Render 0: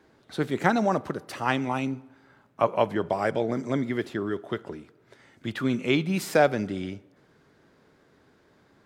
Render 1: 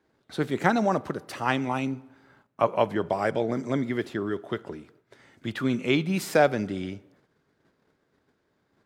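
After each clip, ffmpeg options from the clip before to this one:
-af "agate=range=0.282:threshold=0.00126:ratio=16:detection=peak"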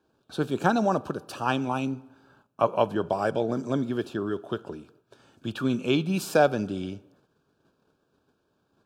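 -af "asuperstop=centerf=2000:order=4:qfactor=2.7"

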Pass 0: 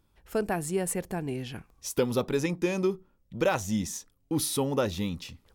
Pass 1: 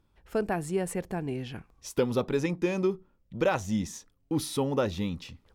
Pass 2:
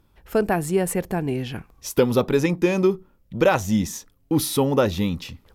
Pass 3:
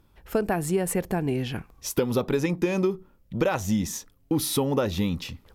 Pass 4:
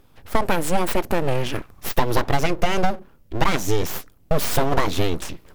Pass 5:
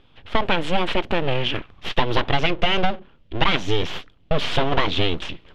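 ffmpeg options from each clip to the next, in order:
-af "lowpass=f=3900:p=1"
-af "equalizer=f=13000:w=2.3:g=11,volume=2.51"
-af "acompressor=threshold=0.1:ratio=6"
-af "aeval=exprs='abs(val(0))':c=same,volume=2.37"
-af "lowpass=f=3200:t=q:w=3.4,volume=0.891"

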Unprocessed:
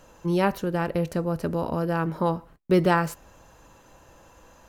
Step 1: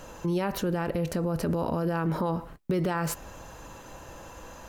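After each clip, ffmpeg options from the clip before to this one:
-af "acompressor=threshold=0.0631:ratio=6,alimiter=level_in=1.5:limit=0.0631:level=0:latency=1:release=49,volume=0.668,volume=2.51"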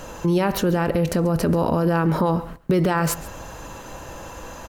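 -af "aecho=1:1:136:0.119,volume=2.51"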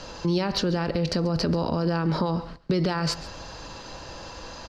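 -filter_complex "[0:a]acrossover=split=260[s0][s1];[s1]acompressor=threshold=0.0891:ratio=3[s2];[s0][s2]amix=inputs=2:normalize=0,lowpass=f=4700:t=q:w=5.9,volume=0.631"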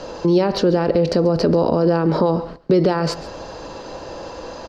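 -af "equalizer=f=460:w=0.61:g=12.5"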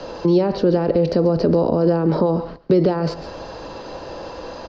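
-filter_complex "[0:a]lowpass=f=5700:w=0.5412,lowpass=f=5700:w=1.3066,acrossover=split=140|780[s0][s1][s2];[s2]alimiter=level_in=1.06:limit=0.0631:level=0:latency=1:release=160,volume=0.944[s3];[s0][s1][s3]amix=inputs=3:normalize=0"

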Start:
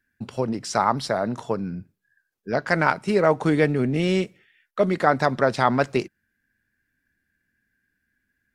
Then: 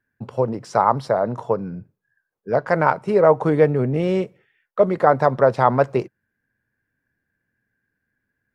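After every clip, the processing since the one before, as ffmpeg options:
-af "equalizer=f=125:t=o:w=1:g=10,equalizer=f=500:t=o:w=1:g=11,equalizer=f=1000:t=o:w=1:g=9,equalizer=f=4000:t=o:w=1:g=-3,equalizer=f=8000:t=o:w=1:g=-4,volume=0.501"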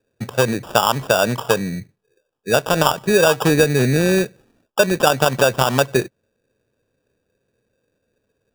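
-af "acompressor=threshold=0.158:ratio=6,acrusher=samples=21:mix=1:aa=0.000001,volume=1.88"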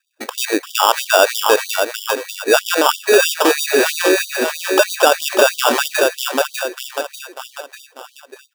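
-filter_complex "[0:a]asplit=2[s0][s1];[s1]aecho=0:1:594|1188|1782|2376|2970:0.376|0.177|0.083|0.039|0.0183[s2];[s0][s2]amix=inputs=2:normalize=0,alimiter=level_in=3.16:limit=0.891:release=50:level=0:latency=1,afftfilt=real='re*gte(b*sr/1024,240*pow(3000/240,0.5+0.5*sin(2*PI*3.1*pts/sr)))':imag='im*gte(b*sr/1024,240*pow(3000/240,0.5+0.5*sin(2*PI*3.1*pts/sr)))':win_size=1024:overlap=0.75,volume=0.891"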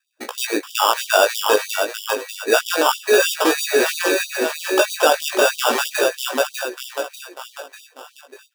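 -af "flanger=delay=16:depth=3.3:speed=0.3"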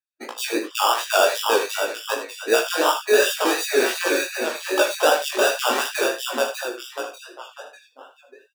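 -af "afftdn=nr=20:nf=-39,flanger=delay=17:depth=6.9:speed=2.7,aecho=1:1:43|78:0.251|0.299"

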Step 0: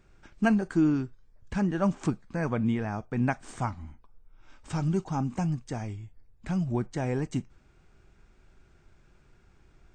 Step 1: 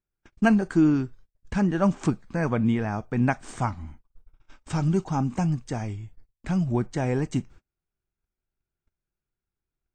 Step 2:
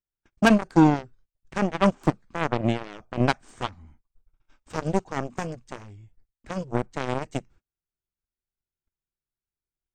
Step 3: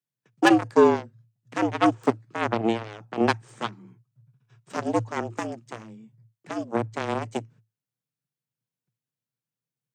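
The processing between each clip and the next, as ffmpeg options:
-af "agate=range=0.0224:threshold=0.00355:ratio=16:detection=peak,volume=1.58"
-af "aeval=exprs='0.422*(cos(1*acos(clip(val(0)/0.422,-1,1)))-cos(1*PI/2))+0.075*(cos(7*acos(clip(val(0)/0.422,-1,1)))-cos(7*PI/2))':c=same,volume=1.41"
-af "afreqshift=110"

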